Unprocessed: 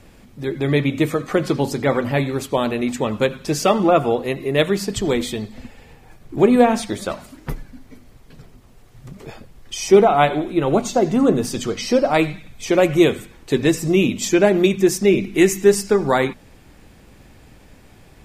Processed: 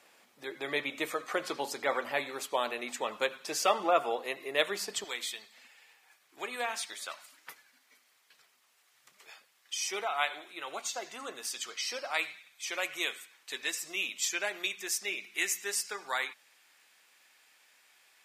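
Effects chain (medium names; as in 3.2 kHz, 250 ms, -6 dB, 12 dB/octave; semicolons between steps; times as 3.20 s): high-pass 720 Hz 12 dB/octave, from 5.04 s 1.5 kHz; trim -6.5 dB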